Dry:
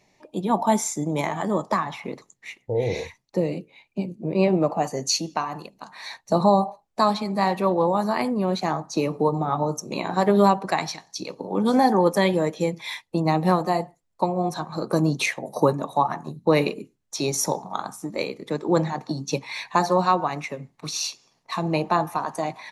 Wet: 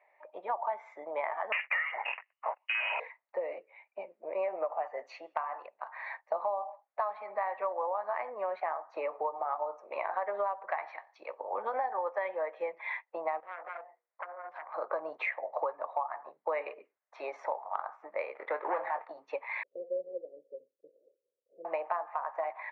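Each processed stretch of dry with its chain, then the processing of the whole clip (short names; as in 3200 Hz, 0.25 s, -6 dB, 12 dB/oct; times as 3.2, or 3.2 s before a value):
1.52–3 sample leveller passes 3 + inverted band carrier 3000 Hz
13.4–14.74 self-modulated delay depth 0.79 ms + compressor 5:1, threshold -37 dBFS + notches 60/120/180/240/300/360/420/480 Hz
18.35–19.08 sample leveller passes 2 + doubler 23 ms -11.5 dB
19.63–21.65 block floating point 3-bit + steep low-pass 530 Hz 96 dB/oct + low shelf 86 Hz -11 dB
whole clip: elliptic band-pass 570–2100 Hz, stop band 80 dB; compressor 6:1, threshold -30 dBFS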